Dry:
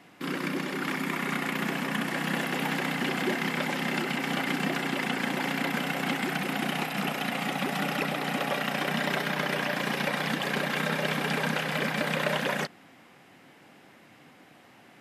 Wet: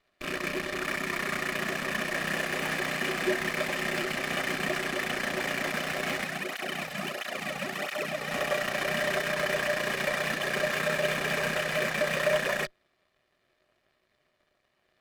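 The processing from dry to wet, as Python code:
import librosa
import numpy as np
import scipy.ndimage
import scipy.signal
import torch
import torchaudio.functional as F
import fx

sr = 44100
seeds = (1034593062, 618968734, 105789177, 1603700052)

y = fx.rattle_buzz(x, sr, strikes_db=-35.0, level_db=-24.0)
y = fx.peak_eq(y, sr, hz=1800.0, db=6.5, octaves=0.99)
y = 10.0 ** (-19.0 / 20.0) * np.tanh(y / 10.0 ** (-19.0 / 20.0))
y = fx.cheby_harmonics(y, sr, harmonics=(3, 7, 8), levels_db=(-26, -19, -22), full_scale_db=-19.0)
y = y + 0.39 * np.pad(y, (int(1.7 * sr / 1000.0), 0))[:len(y)]
y = fx.small_body(y, sr, hz=(370.0, 610.0), ring_ms=90, db=12)
y = fx.flanger_cancel(y, sr, hz=1.5, depth_ms=3.2, at=(6.24, 8.31))
y = y * 10.0 ** (-3.0 / 20.0)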